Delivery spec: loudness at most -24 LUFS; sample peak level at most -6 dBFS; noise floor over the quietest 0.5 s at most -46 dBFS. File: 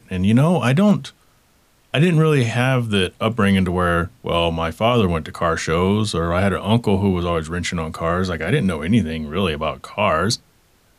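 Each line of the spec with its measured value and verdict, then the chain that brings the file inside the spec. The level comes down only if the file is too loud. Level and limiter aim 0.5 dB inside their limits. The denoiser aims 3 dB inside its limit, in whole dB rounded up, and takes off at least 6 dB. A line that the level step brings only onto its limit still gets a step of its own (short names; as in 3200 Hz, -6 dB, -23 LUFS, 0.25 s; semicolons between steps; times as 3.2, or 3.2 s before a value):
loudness -19.0 LUFS: fail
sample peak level -3.0 dBFS: fail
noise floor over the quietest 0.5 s -57 dBFS: OK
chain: gain -5.5 dB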